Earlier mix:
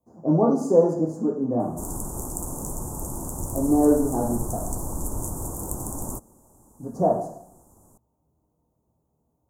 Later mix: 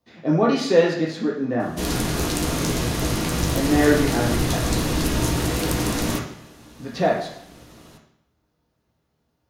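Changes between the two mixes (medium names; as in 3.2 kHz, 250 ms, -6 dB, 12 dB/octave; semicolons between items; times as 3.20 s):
background: send on; master: remove elliptic band-stop 970–7300 Hz, stop band 60 dB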